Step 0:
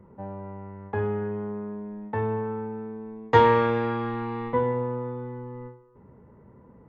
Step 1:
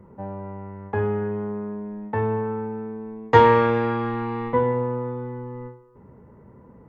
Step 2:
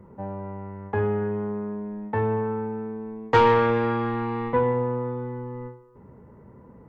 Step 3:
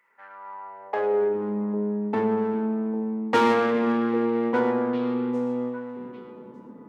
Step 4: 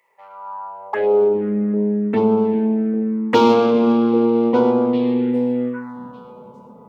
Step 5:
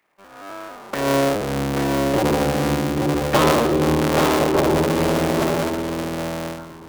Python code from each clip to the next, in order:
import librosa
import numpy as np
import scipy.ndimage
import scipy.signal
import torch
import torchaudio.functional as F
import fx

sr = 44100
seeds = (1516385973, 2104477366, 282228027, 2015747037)

y1 = fx.peak_eq(x, sr, hz=3600.0, db=-3.0, octaves=0.3)
y1 = F.gain(torch.from_numpy(y1), 3.5).numpy()
y2 = 10.0 ** (-11.5 / 20.0) * np.tanh(y1 / 10.0 ** (-11.5 / 20.0))
y3 = fx.diode_clip(y2, sr, knee_db=-29.0)
y3 = fx.echo_stepped(y3, sr, ms=400, hz=170.0, octaves=1.4, feedback_pct=70, wet_db=-5.5)
y3 = fx.filter_sweep_highpass(y3, sr, from_hz=2100.0, to_hz=250.0, start_s=0.05, end_s=1.56, q=3.0)
y4 = fx.env_phaser(y3, sr, low_hz=250.0, high_hz=1800.0, full_db=-20.5)
y4 = F.gain(torch.from_numpy(y4), 8.5).numpy()
y5 = fx.cycle_switch(y4, sr, every=3, mode='inverted')
y5 = y5 + 10.0 ** (-4.0 / 20.0) * np.pad(y5, (int(836 * sr / 1000.0), 0))[:len(y5)]
y5 = F.gain(torch.from_numpy(y5), -3.5).numpy()